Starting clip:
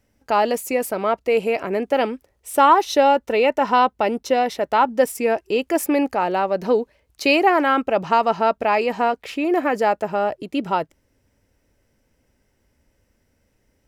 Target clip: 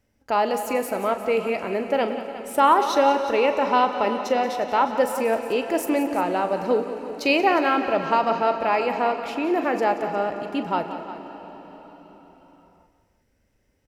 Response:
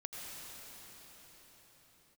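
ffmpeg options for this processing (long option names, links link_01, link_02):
-filter_complex "[0:a]aecho=1:1:40|180|215|356:0.224|0.224|0.106|0.188,asplit=2[link_01][link_02];[1:a]atrim=start_sample=2205,lowpass=7300[link_03];[link_02][link_03]afir=irnorm=-1:irlink=0,volume=-6.5dB[link_04];[link_01][link_04]amix=inputs=2:normalize=0,volume=-5.5dB"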